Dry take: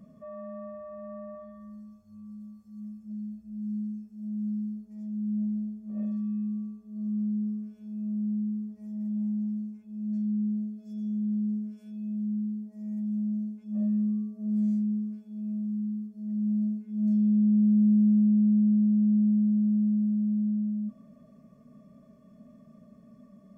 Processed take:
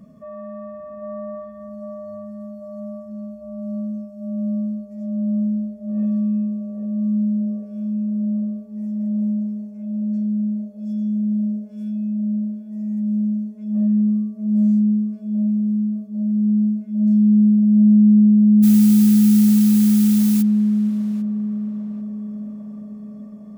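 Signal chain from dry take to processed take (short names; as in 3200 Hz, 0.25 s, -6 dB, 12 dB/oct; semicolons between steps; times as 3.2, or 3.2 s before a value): 18.62–20.41 added noise blue -37 dBFS; narrowing echo 0.798 s, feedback 85%, band-pass 510 Hz, level -3 dB; gain +6.5 dB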